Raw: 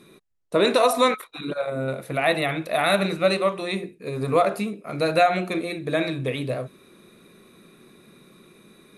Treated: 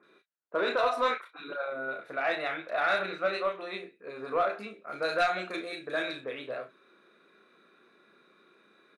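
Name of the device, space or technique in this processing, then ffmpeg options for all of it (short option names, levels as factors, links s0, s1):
intercom: -filter_complex "[0:a]asettb=1/sr,asplit=3[s0][s1][s2];[s0]atrim=end=4.854[s3];[s1]atrim=start=4.85:end=6.18,asetpts=PTS-STARTPTS,afade=t=in:d=0.004:c=qsin,afade=t=out:st=1.326:d=0.004:c=qsin,bass=f=250:g=2,treble=f=4000:g=14[s4];[s2]atrim=start=6.176[s5];[s3][s4]acrossfade=d=0.004:c1=hsin:c2=qsin[s6];[s6][s5]acrossfade=d=0.004:c1=qsin:c2=hsin,highpass=400,lowpass=3800,equalizer=f=1500:t=o:w=0.46:g=12,acrossover=split=1800[s7][s8];[s8]adelay=30[s9];[s7][s9]amix=inputs=2:normalize=0,asoftclip=type=tanh:threshold=0.355,asplit=2[s10][s11];[s11]adelay=33,volume=0.355[s12];[s10][s12]amix=inputs=2:normalize=0,volume=0.398"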